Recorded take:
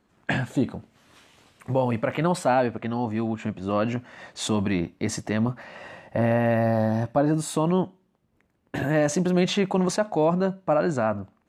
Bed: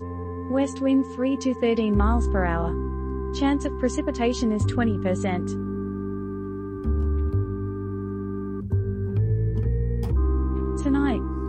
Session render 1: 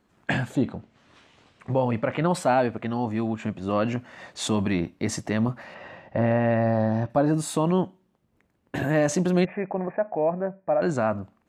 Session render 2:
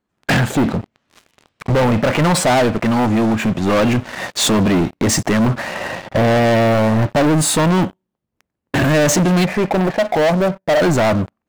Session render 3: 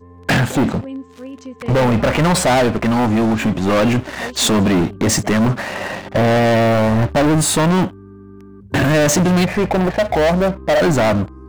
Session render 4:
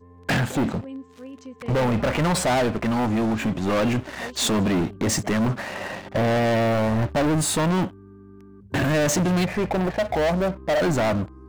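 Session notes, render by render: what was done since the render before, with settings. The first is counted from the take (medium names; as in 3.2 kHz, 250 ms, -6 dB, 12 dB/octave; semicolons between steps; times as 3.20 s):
0.55–2.31 s: distance through air 84 m; 5.74–7.10 s: distance through air 140 m; 9.45–10.82 s: rippled Chebyshev low-pass 2.5 kHz, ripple 9 dB
waveshaping leveller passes 5
add bed -9 dB
trim -7 dB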